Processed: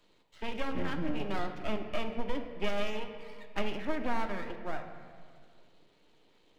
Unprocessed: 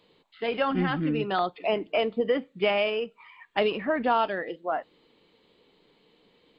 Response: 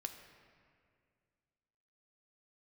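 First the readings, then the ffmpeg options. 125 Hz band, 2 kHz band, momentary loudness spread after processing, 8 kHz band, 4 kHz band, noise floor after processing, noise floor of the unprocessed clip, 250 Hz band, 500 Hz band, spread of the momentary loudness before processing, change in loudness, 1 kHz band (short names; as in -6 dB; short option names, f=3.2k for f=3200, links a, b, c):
-7.0 dB, -8.5 dB, 9 LU, n/a, -9.0 dB, -65 dBFS, -65 dBFS, -6.5 dB, -11.5 dB, 8 LU, -9.5 dB, -10.0 dB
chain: -filter_complex "[0:a]aeval=exprs='max(val(0),0)':c=same,acrossover=split=230[a][b];[b]acompressor=threshold=-43dB:ratio=1.5[c];[a][c]amix=inputs=2:normalize=0[d];[1:a]atrim=start_sample=2205[e];[d][e]afir=irnorm=-1:irlink=0,volume=2dB"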